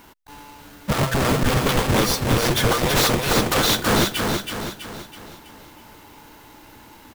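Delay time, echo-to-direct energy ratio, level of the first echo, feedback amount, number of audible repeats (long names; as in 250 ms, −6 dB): 326 ms, −3.5 dB, −4.5 dB, 48%, 5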